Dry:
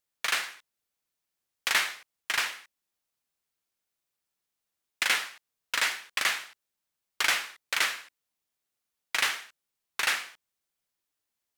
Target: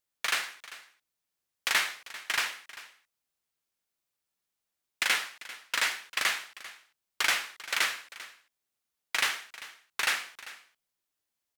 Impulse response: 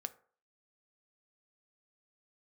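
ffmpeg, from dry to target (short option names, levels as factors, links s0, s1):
-af "aecho=1:1:394:0.141,volume=0.891"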